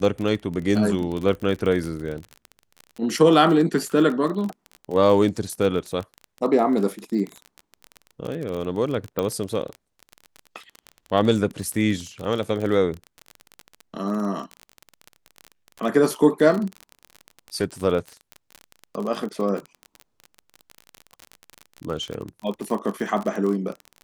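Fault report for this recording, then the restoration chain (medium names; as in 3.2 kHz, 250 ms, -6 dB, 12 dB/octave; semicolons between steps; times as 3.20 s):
crackle 31 per s -27 dBFS
9.19 s: pop -11 dBFS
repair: de-click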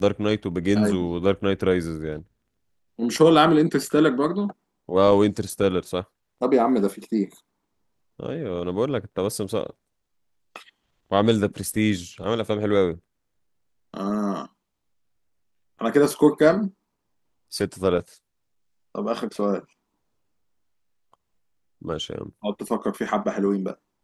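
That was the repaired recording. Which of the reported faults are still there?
nothing left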